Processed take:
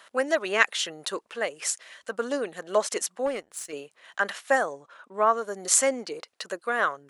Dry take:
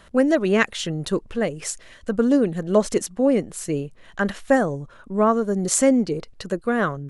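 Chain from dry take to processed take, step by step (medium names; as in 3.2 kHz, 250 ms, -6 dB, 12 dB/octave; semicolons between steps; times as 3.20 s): high-pass 750 Hz 12 dB/octave; 3.26–3.73 s: power-law waveshaper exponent 1.4; 4.73–5.38 s: treble shelf 8.7 kHz -11.5 dB; trim +1 dB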